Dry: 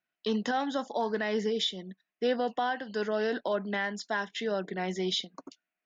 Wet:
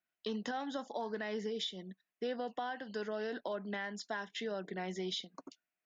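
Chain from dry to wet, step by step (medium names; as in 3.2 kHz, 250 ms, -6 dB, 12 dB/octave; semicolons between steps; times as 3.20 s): compression 2.5:1, threshold -32 dBFS, peak gain reduction 6 dB; trim -4.5 dB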